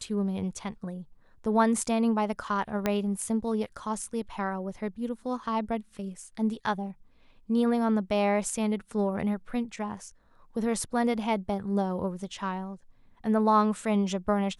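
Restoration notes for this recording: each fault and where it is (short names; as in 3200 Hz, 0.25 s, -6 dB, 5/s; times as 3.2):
2.86 pop -12 dBFS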